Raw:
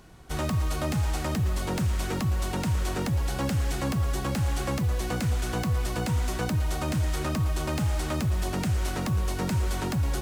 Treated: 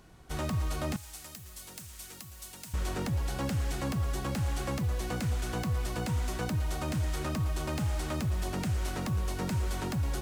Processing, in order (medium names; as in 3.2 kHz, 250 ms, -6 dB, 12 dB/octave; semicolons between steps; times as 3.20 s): 0.96–2.74 s: pre-emphasis filter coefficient 0.9; trim -4.5 dB